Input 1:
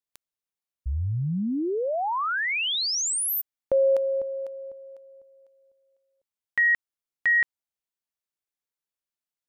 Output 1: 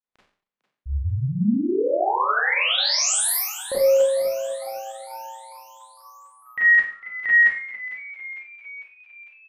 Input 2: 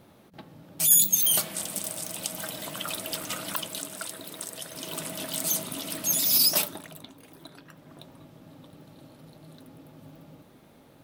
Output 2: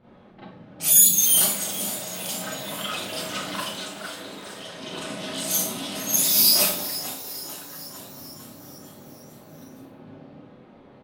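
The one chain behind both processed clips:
low-pass that shuts in the quiet parts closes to 2,300 Hz, open at −23.5 dBFS
echo with shifted repeats 451 ms, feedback 61%, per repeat +120 Hz, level −14 dB
four-comb reverb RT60 0.47 s, combs from 30 ms, DRR −9.5 dB
level −5 dB

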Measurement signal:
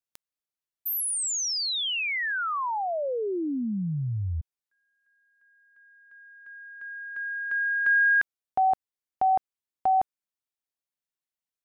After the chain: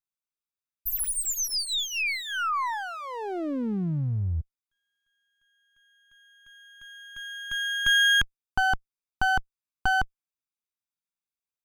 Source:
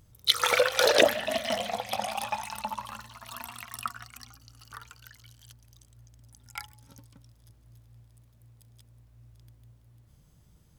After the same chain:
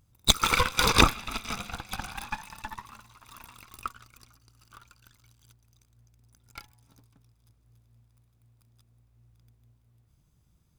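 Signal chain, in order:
lower of the sound and its delayed copy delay 0.81 ms
expander for the loud parts 1.5 to 1, over −40 dBFS
level +4.5 dB

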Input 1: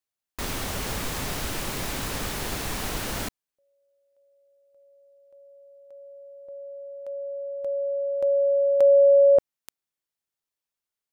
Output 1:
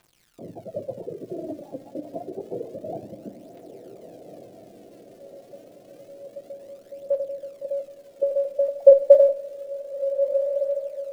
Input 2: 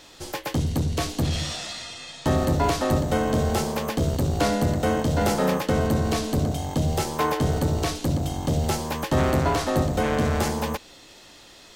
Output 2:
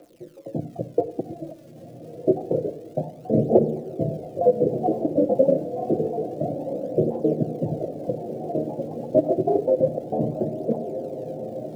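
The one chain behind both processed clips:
time-frequency cells dropped at random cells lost 58%
Chebyshev band-pass filter 110–680 Hz, order 5
hum removal 140.7 Hz, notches 39
reverb reduction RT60 1.8 s
parametric band 140 Hz −12.5 dB 1.9 octaves
automatic gain control gain up to 7 dB
surface crackle 430 per second −53 dBFS
phase shifter 0.28 Hz, delay 3.8 ms, feedback 66%
feedback delay with all-pass diffusion 1,424 ms, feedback 58%, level −10 dB
rectangular room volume 2,100 cubic metres, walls furnished, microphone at 0.82 metres
boost into a limiter +4 dB
level −1 dB

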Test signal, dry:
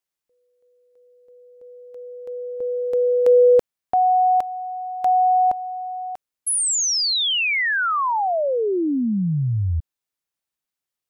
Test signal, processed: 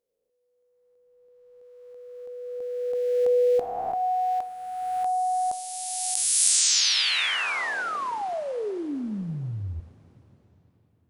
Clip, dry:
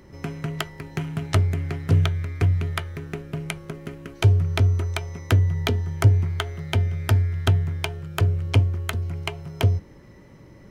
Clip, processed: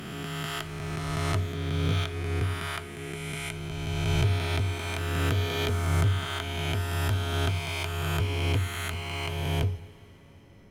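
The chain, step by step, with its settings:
peak hold with a rise ahead of every peak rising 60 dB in 2.53 s
coupled-rooms reverb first 0.57 s, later 4.3 s, from −15 dB, DRR 11 dB
level −10.5 dB

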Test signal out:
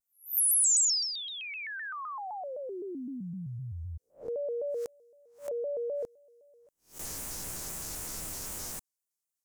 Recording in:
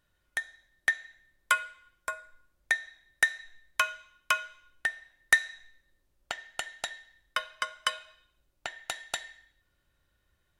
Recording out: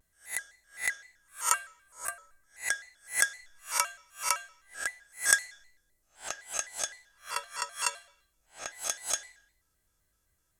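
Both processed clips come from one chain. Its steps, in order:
peak hold with a rise ahead of every peak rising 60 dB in 0.30 s
high shelf with overshoot 5,000 Hz +10.5 dB, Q 1.5
pitch modulation by a square or saw wave square 3.9 Hz, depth 160 cents
level −5 dB

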